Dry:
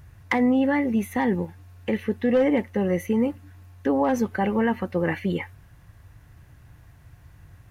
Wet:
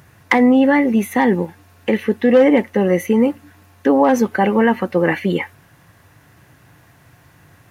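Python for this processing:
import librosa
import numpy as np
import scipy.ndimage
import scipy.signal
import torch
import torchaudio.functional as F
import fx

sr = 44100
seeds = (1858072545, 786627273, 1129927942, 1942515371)

y = scipy.signal.sosfilt(scipy.signal.butter(2, 190.0, 'highpass', fs=sr, output='sos'), x)
y = F.gain(torch.from_numpy(y), 9.0).numpy()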